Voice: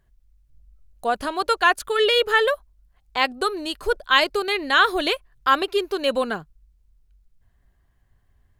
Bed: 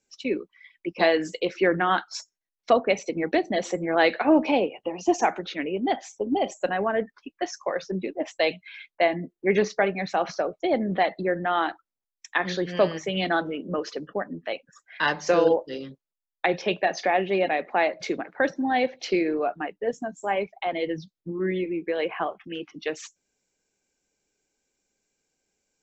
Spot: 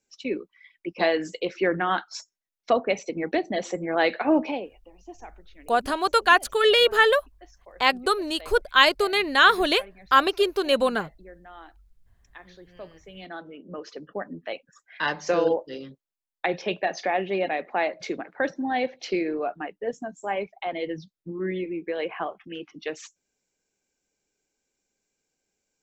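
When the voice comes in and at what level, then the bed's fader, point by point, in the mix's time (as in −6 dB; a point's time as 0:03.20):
4.65 s, +0.5 dB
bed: 0:04.41 −2 dB
0:04.86 −21.5 dB
0:12.78 −21.5 dB
0:14.26 −2.5 dB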